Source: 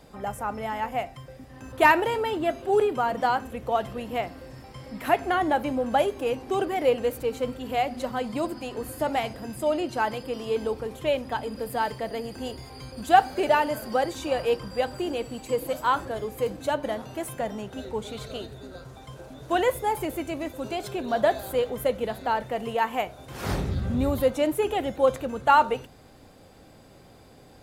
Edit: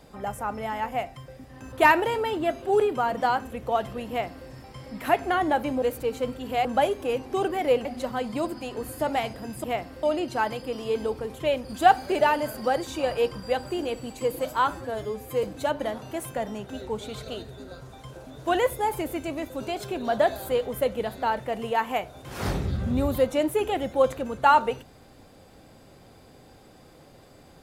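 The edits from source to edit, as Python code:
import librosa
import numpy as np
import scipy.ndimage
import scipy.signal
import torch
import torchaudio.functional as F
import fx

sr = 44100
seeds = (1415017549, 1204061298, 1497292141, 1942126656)

y = fx.edit(x, sr, fx.duplicate(start_s=4.09, length_s=0.39, to_s=9.64),
    fx.move(start_s=7.02, length_s=0.83, to_s=5.82),
    fx.cut(start_s=11.26, length_s=1.67),
    fx.stretch_span(start_s=15.98, length_s=0.49, factor=1.5), tone=tone)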